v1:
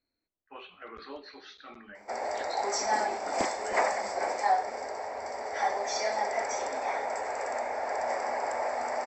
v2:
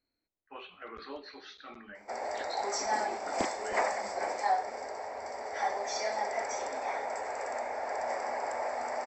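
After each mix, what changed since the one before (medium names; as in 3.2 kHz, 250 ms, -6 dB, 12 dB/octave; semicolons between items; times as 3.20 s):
background -3.0 dB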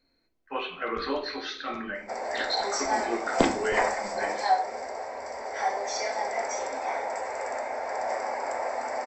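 speech +9.5 dB; reverb: on, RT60 0.45 s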